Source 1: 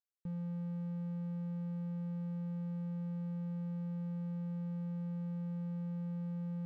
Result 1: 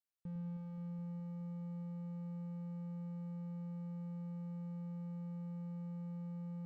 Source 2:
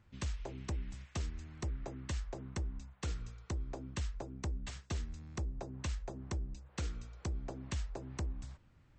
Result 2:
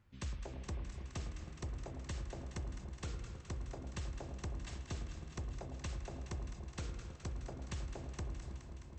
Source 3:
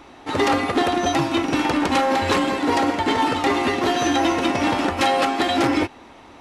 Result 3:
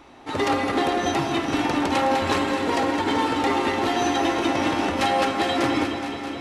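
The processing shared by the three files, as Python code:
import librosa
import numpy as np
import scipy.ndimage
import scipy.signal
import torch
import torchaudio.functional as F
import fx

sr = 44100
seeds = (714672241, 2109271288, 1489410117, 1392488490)

y = fx.echo_alternate(x, sr, ms=105, hz=1100.0, feedback_pct=88, wet_db=-8.5)
y = fx.rev_spring(y, sr, rt60_s=4.0, pass_ms=(32, 40, 49), chirp_ms=80, drr_db=8.5)
y = y * 10.0 ** (-4.0 / 20.0)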